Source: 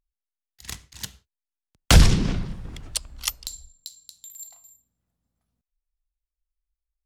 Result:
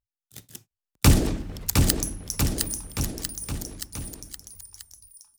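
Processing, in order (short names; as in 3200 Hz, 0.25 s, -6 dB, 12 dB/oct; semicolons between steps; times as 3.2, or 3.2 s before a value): speed glide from 190% -> 72%; Doppler pass-by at 2.43, 8 m/s, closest 3.1 m; bouncing-ball echo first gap 0.71 s, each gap 0.9×, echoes 5; gain +8.5 dB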